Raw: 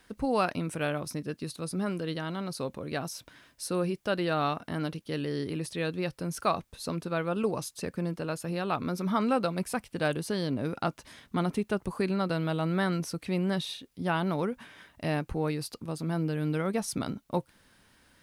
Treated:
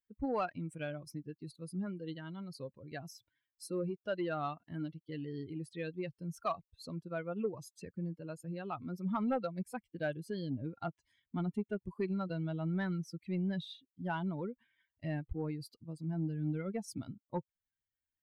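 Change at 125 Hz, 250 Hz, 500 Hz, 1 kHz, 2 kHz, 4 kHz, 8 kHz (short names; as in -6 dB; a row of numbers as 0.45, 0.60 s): -6.5, -7.0, -8.5, -9.5, -10.5, -13.5, -14.5 dB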